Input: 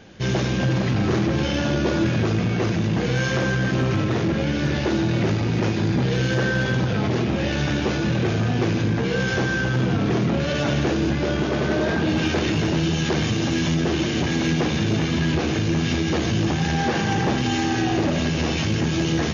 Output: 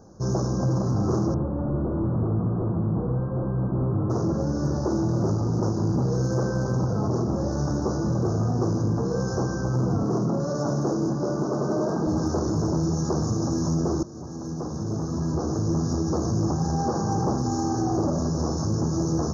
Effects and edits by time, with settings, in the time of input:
0:01.34–0:04.10: linear delta modulator 16 kbit/s, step −39.5 dBFS
0:10.03–0:12.07: high-pass filter 120 Hz 24 dB per octave
0:14.03–0:15.71: fade in, from −16 dB
whole clip: elliptic band-stop filter 1,200–5,500 Hz, stop band 60 dB; parametric band 230 Hz −2 dB; level −1.5 dB

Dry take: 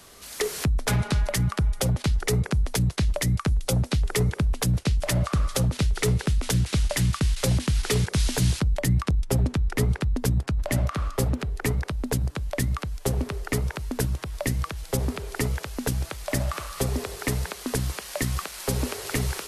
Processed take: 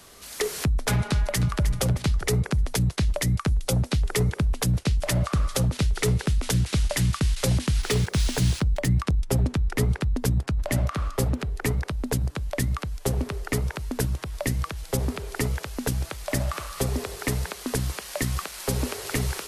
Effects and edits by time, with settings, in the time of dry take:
0:01.08–0:01.66: delay throw 310 ms, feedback 40%, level −10 dB
0:07.81–0:09.00: running median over 3 samples

